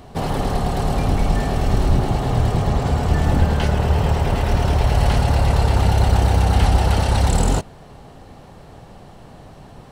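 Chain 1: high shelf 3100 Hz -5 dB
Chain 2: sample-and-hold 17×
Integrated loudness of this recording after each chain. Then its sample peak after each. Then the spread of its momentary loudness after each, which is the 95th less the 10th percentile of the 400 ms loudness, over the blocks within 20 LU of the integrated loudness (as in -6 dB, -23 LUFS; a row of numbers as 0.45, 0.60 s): -19.0, -19.0 LUFS; -3.0, -3.0 dBFS; 5, 5 LU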